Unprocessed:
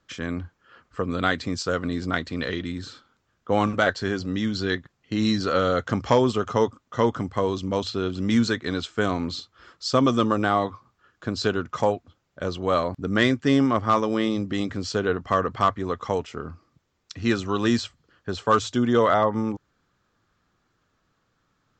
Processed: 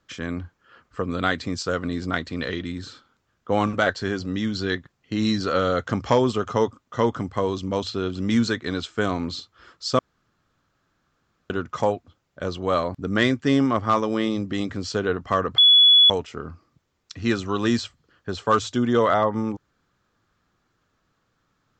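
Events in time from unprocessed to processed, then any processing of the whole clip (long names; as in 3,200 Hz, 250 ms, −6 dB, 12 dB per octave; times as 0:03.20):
0:09.99–0:11.50: fill with room tone
0:15.58–0:16.10: beep over 3,400 Hz −10 dBFS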